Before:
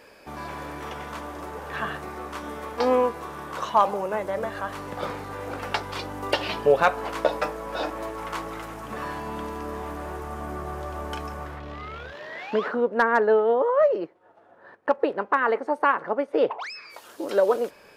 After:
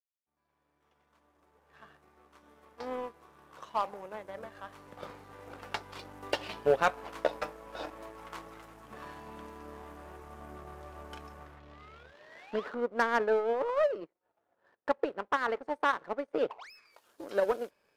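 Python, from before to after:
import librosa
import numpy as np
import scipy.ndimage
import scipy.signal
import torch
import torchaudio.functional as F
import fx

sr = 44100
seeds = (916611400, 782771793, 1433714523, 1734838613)

y = fx.fade_in_head(x, sr, length_s=5.87)
y = fx.power_curve(y, sr, exponent=1.4)
y = y * 10.0 ** (-5.5 / 20.0)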